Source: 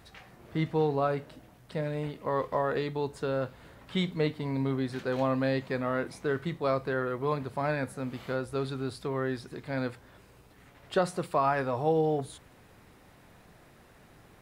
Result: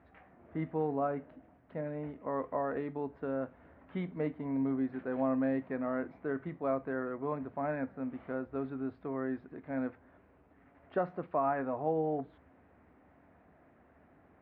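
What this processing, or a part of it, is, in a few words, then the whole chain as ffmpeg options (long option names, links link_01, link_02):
bass cabinet: -af "highpass=68,equalizer=frequency=74:width_type=q:width=4:gain=9,equalizer=frequency=120:width_type=q:width=4:gain=-8,equalizer=frequency=270:width_type=q:width=4:gain=8,equalizer=frequency=670:width_type=q:width=4:gain=6,lowpass=frequency=2100:width=0.5412,lowpass=frequency=2100:width=1.3066,volume=-7.5dB"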